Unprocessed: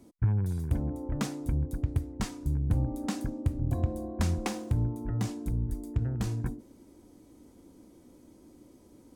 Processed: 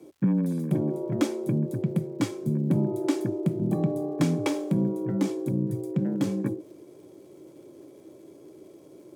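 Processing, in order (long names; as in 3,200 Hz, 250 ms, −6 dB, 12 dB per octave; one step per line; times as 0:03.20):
hollow resonant body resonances 230/460/2,200/3,200 Hz, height 9 dB, ringing for 30 ms
frequency shifter +80 Hz
surface crackle 210 per second −55 dBFS
level +1 dB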